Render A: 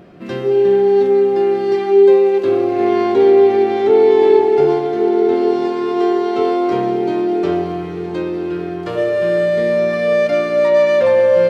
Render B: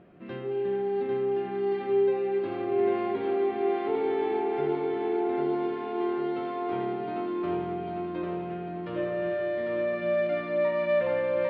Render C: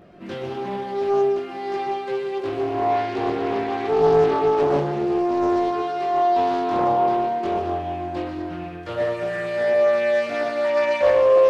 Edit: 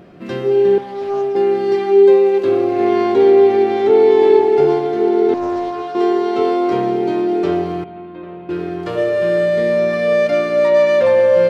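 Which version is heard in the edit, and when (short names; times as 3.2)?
A
0.78–1.35 from C
5.34–5.95 from C
7.84–8.49 from B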